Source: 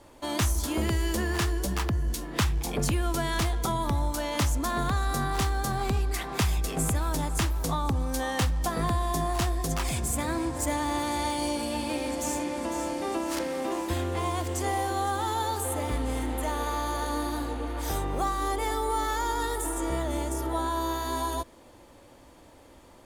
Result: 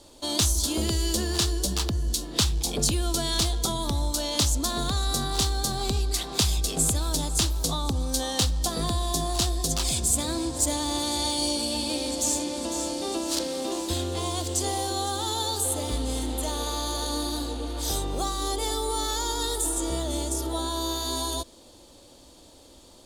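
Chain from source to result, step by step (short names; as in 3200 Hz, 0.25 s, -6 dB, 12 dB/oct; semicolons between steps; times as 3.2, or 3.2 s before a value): ten-band EQ 125 Hz -4 dB, 1000 Hz -4 dB, 2000 Hz -10 dB, 4000 Hz +11 dB, 8000 Hz +6 dB; gain +1.5 dB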